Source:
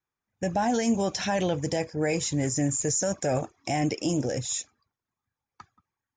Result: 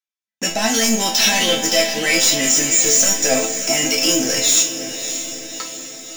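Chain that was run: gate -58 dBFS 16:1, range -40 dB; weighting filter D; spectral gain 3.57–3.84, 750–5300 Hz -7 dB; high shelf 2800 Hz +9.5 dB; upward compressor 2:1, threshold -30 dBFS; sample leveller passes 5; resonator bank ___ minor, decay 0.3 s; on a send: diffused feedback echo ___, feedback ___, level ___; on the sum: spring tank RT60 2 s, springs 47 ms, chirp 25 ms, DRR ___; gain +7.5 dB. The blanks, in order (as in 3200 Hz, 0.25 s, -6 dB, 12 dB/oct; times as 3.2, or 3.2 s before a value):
A3, 0.615 s, 55%, -10 dB, 12.5 dB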